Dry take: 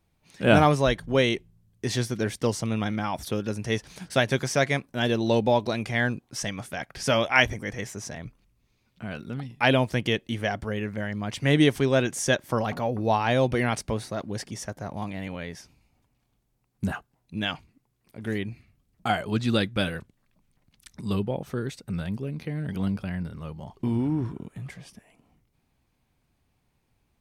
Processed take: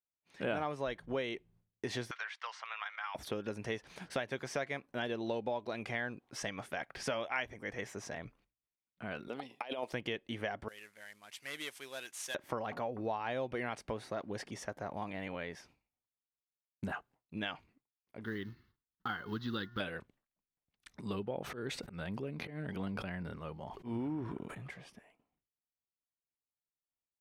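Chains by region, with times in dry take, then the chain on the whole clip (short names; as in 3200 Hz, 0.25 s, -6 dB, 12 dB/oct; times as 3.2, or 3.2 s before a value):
2.11–3.15 inverse Chebyshev high-pass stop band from 240 Hz, stop band 70 dB + air absorption 160 m + three-band squash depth 100%
9.28–9.93 HPF 440 Hz + negative-ratio compressor -29 dBFS, ratio -0.5 + bell 1600 Hz -9 dB 1.1 oct
10.68–12.35 CVSD 64 kbps + pre-emphasis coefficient 0.97
18.24–19.8 companded quantiser 6-bit + fixed phaser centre 2400 Hz, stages 6 + de-hum 356.7 Hz, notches 6
21.33–24.68 auto swell 0.133 s + sustainer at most 56 dB/s
whole clip: expander -52 dBFS; tone controls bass -10 dB, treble -11 dB; compressor 4:1, threshold -33 dBFS; gain -2 dB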